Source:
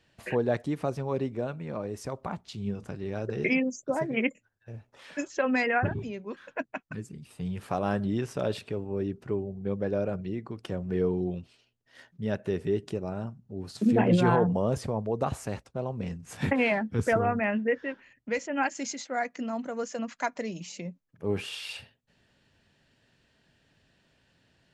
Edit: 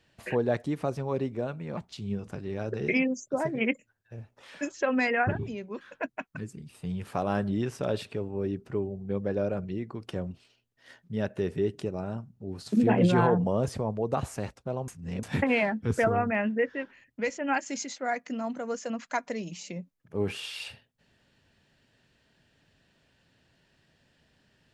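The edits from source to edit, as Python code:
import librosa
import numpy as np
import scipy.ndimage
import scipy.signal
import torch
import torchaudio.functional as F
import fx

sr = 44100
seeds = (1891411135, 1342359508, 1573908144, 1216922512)

y = fx.edit(x, sr, fx.cut(start_s=1.77, length_s=0.56),
    fx.cut(start_s=10.87, length_s=0.53),
    fx.reverse_span(start_s=15.97, length_s=0.35), tone=tone)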